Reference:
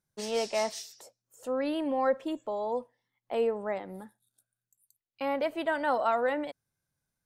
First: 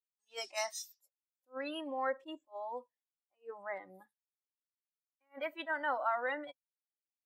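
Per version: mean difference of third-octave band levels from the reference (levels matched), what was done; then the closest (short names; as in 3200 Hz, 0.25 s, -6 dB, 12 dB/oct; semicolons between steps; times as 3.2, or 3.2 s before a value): 8.0 dB: spectral noise reduction 20 dB; expander -55 dBFS; tilt shelf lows -8 dB; attack slew limiter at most 380 dB/s; gain -5.5 dB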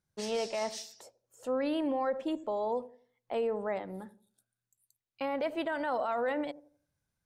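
2.5 dB: bell 69 Hz +6 dB 0.91 oct; dark delay 85 ms, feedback 32%, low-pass 540 Hz, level -14 dB; limiter -24 dBFS, peak gain reduction 9 dB; high shelf 11000 Hz -9.5 dB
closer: second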